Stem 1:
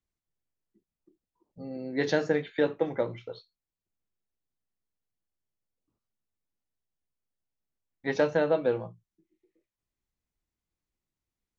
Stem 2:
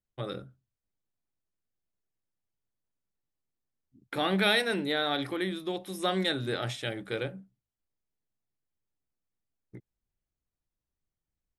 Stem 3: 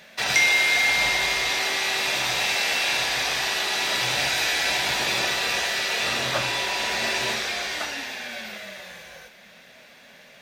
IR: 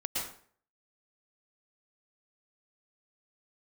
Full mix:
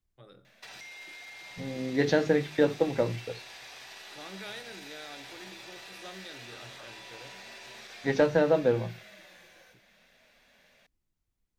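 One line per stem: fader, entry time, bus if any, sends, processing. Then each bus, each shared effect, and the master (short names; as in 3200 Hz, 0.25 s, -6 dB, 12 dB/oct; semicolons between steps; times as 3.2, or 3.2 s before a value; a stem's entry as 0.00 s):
+0.5 dB, 0.00 s, no send, low shelf 160 Hz +11.5 dB; notches 50/100/150 Hz
-12.0 dB, 0.00 s, no send, resonator 51 Hz, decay 2 s, harmonics all, mix 50%
-13.5 dB, 0.45 s, no send, limiter -19 dBFS, peak gain reduction 11 dB; compressor 3:1, threshold -32 dBFS, peak gain reduction 6.5 dB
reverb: off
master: de-hum 52.75 Hz, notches 7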